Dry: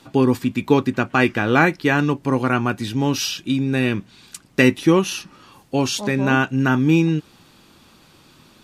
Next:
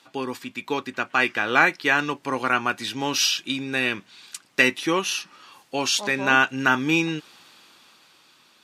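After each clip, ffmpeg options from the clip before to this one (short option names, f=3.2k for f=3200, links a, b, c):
-af "highpass=f=1.4k:p=1,highshelf=f=8.1k:g=-7.5,dynaudnorm=f=270:g=9:m=11.5dB,volume=-1dB"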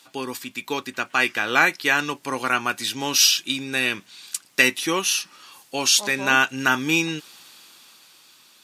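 -af "crystalizer=i=2.5:c=0,volume=-1.5dB"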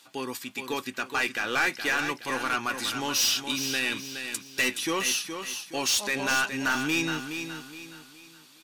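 -filter_complex "[0:a]asoftclip=type=tanh:threshold=-17dB,asplit=2[a][b];[b]aecho=0:1:419|838|1257|1676:0.398|0.143|0.0516|0.0186[c];[a][c]amix=inputs=2:normalize=0,volume=-3dB"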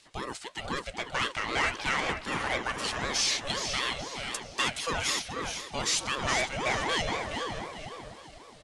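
-filter_complex "[0:a]asplit=2[a][b];[b]adelay=494,lowpass=f=1.1k:p=1,volume=-4dB,asplit=2[c][d];[d]adelay=494,lowpass=f=1.1k:p=1,volume=0.37,asplit=2[e][f];[f]adelay=494,lowpass=f=1.1k:p=1,volume=0.37,asplit=2[g][h];[h]adelay=494,lowpass=f=1.1k:p=1,volume=0.37,asplit=2[i][j];[j]adelay=494,lowpass=f=1.1k:p=1,volume=0.37[k];[a][c][e][g][i][k]amix=inputs=6:normalize=0,aresample=22050,aresample=44100,aeval=exprs='val(0)*sin(2*PI*560*n/s+560*0.5/3.9*sin(2*PI*3.9*n/s))':c=same"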